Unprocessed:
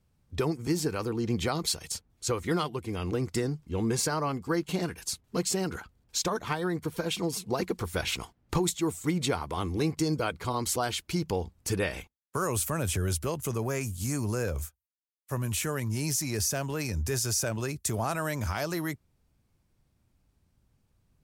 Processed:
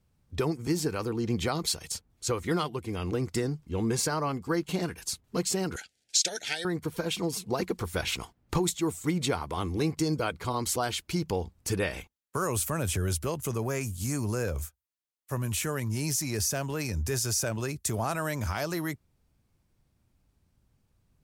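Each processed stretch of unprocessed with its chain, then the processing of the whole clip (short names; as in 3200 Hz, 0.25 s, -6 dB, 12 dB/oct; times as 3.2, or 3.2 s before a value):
5.76–6.65 weighting filter ITU-R 468 + compressor 4:1, threshold -20 dBFS + Butterworth band-stop 1100 Hz, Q 1.3
whole clip: dry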